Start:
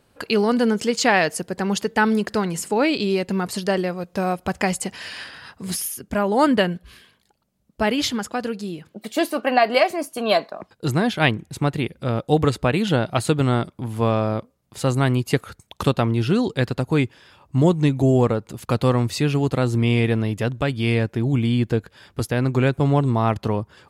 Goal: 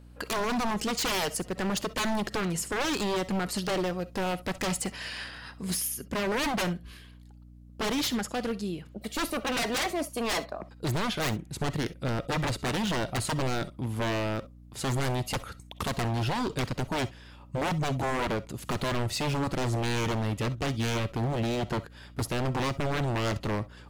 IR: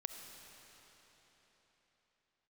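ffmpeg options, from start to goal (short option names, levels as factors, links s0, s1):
-filter_complex "[0:a]aeval=exprs='0.1*(abs(mod(val(0)/0.1+3,4)-2)-1)':c=same[s0];[1:a]atrim=start_sample=2205,atrim=end_sample=3087[s1];[s0][s1]afir=irnorm=-1:irlink=0,aeval=exprs='val(0)+0.00355*(sin(2*PI*60*n/s)+sin(2*PI*2*60*n/s)/2+sin(2*PI*3*60*n/s)/3+sin(2*PI*4*60*n/s)/4+sin(2*PI*5*60*n/s)/5)':c=same"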